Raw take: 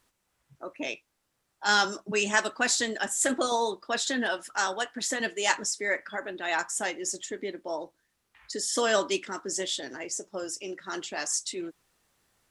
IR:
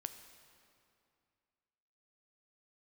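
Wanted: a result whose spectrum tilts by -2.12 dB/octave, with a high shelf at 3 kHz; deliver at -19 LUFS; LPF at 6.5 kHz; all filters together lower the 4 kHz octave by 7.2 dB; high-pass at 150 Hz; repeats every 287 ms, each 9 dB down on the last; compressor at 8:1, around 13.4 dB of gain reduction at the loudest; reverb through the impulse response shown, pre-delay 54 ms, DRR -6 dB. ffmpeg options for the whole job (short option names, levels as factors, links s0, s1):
-filter_complex "[0:a]highpass=150,lowpass=6500,highshelf=f=3000:g=-3,equalizer=f=4000:t=o:g=-6.5,acompressor=threshold=0.02:ratio=8,aecho=1:1:287|574|861|1148:0.355|0.124|0.0435|0.0152,asplit=2[s0][s1];[1:a]atrim=start_sample=2205,adelay=54[s2];[s1][s2]afir=irnorm=-1:irlink=0,volume=2.82[s3];[s0][s3]amix=inputs=2:normalize=0,volume=4.22"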